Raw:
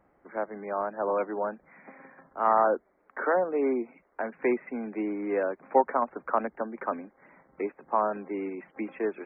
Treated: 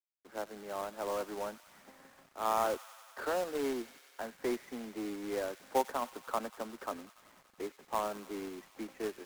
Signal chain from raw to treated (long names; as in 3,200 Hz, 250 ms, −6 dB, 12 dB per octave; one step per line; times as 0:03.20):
running median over 15 samples
log-companded quantiser 4 bits
tape wow and flutter 22 cents
on a send: delay with a high-pass on its return 95 ms, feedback 80%, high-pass 1,900 Hz, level −12 dB
on the sum: level −8.5 dB